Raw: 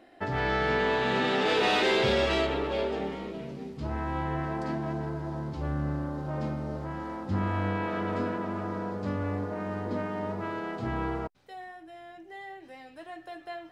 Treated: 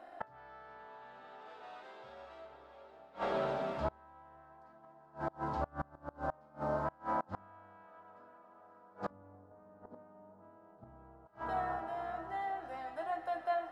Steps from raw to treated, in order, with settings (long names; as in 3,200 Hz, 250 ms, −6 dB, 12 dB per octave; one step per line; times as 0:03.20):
flat-topped bell 950 Hz +12 dB
mains-hum notches 50/100/150/200/250/300/350/400 Hz
feedback delay with all-pass diffusion 538 ms, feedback 45%, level −10 dB
gate with flip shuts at −18 dBFS, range −29 dB
0:09.10–0:11.26: tilt shelving filter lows +10 dB, about 730 Hz
level −5.5 dB